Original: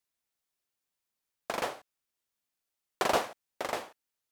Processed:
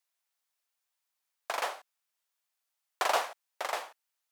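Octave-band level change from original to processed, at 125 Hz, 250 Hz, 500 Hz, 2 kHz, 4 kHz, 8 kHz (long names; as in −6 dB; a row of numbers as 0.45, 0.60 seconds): below −25 dB, −14.0 dB, −3.0 dB, +1.5 dB, +1.0 dB, +1.0 dB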